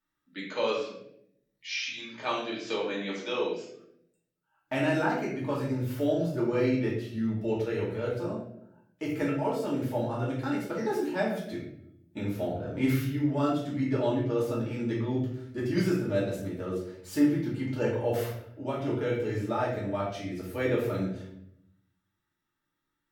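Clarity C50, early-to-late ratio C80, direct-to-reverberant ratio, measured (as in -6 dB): 3.0 dB, 6.5 dB, -7.0 dB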